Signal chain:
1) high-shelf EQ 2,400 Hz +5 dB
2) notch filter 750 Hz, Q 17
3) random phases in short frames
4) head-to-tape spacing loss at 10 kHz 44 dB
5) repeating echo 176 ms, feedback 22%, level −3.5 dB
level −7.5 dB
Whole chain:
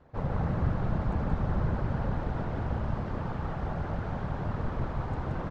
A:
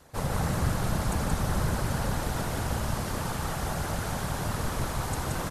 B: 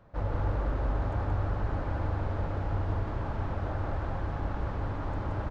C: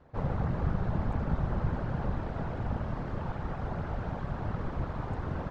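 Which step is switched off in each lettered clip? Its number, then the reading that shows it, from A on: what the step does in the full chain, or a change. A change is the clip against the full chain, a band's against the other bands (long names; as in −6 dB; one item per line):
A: 4, 4 kHz band +14.0 dB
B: 3, 250 Hz band −4.5 dB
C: 5, change in integrated loudness −2.0 LU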